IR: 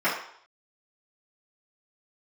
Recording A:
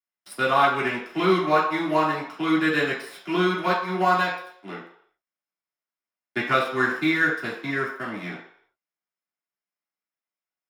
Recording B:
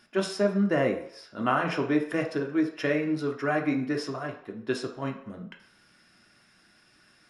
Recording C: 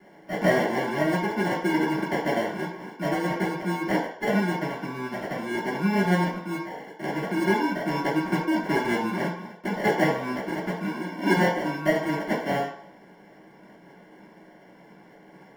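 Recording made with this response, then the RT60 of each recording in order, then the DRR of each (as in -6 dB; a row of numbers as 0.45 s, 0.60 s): C; 0.65 s, 0.65 s, 0.65 s; -7.5 dB, 1.5 dB, -12.5 dB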